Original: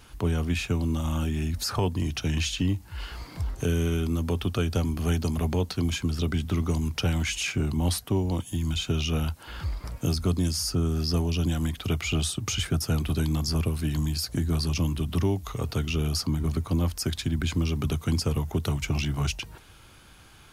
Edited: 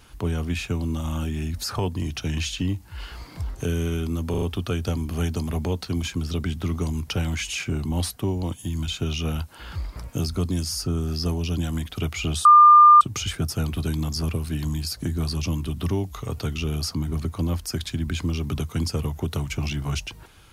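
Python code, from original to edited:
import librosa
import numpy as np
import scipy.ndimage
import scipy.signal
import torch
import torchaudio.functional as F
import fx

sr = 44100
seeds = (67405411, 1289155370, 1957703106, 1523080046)

y = fx.edit(x, sr, fx.stutter(start_s=4.3, slice_s=0.04, count=4),
    fx.insert_tone(at_s=12.33, length_s=0.56, hz=1200.0, db=-7.5), tone=tone)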